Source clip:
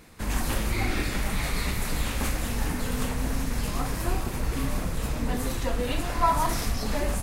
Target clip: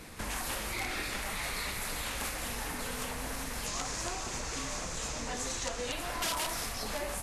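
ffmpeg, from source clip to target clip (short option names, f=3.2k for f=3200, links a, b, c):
-filter_complex "[0:a]acrossover=split=440|3000[a][b][c];[a]acompressor=threshold=-34dB:ratio=6[d];[d][b][c]amix=inputs=3:normalize=0,lowshelf=f=320:g=-3,aeval=exprs='(mod(11.9*val(0)+1,2)-1)/11.9':c=same,asettb=1/sr,asplit=3[e][f][g];[e]atrim=end=3.664[h];[f]atrim=start=3.66:end=5.92,asetpts=PTS-STARTPTS,afade=t=in:d=0.004:c=qsin,afade=t=out:st=2.256:d=0.004:c=qsin,lowpass=f=6.8k:t=q:w=3.5[i];[g]atrim=start=5.916[j];[h][i]acrossfade=d=0.004:c1=hsin:c2=qsin[k];[k][j]acrossfade=d=0.004:c1=qsin:c2=hsin,acompressor=threshold=-45dB:ratio=2,volume=5dB" -ar 32000 -c:a libvorbis -b:a 48k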